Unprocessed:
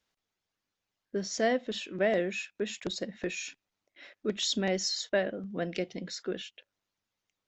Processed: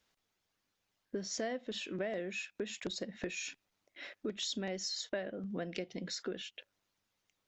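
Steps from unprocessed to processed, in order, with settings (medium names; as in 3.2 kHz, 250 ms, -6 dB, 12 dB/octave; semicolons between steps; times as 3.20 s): compression 4:1, threshold -41 dBFS, peak gain reduction 15.5 dB; trim +3.5 dB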